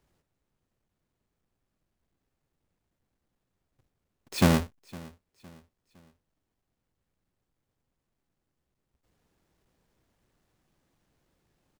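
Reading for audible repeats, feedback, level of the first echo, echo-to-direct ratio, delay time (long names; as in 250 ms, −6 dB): 2, 40%, −22.0 dB, −21.5 dB, 510 ms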